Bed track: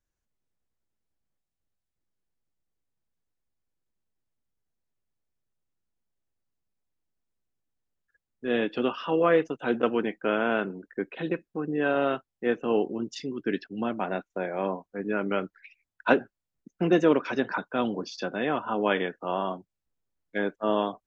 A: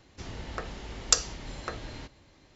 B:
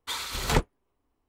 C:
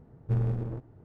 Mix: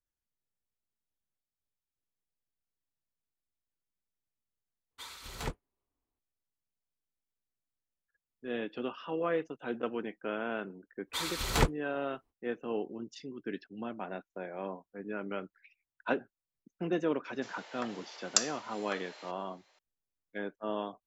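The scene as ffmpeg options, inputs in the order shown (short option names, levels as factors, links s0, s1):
-filter_complex "[2:a]asplit=2[s0][s1];[0:a]volume=0.316[s2];[1:a]highpass=f=560:w=0.5412,highpass=f=560:w=1.3066[s3];[s2]asplit=2[s4][s5];[s4]atrim=end=4.914[s6];[s0]atrim=end=1.28,asetpts=PTS-STARTPTS,volume=0.211[s7];[s5]atrim=start=6.186[s8];[s1]atrim=end=1.28,asetpts=PTS-STARTPTS,volume=0.75,afade=t=in:d=0.05,afade=t=out:st=1.23:d=0.05,adelay=487746S[s9];[s3]atrim=end=2.55,asetpts=PTS-STARTPTS,volume=0.596,afade=t=in:d=0.004:c=hsin,afade=t=out:st=2.546:d=0.004:c=hsin,adelay=17240[s10];[s6][s7]acrossfade=d=0.004:c1=hsin:c2=hsin[s11];[s11][s8]acrossfade=d=0.004:c1=hsin:c2=hsin[s12];[s12][s9][s10]amix=inputs=3:normalize=0"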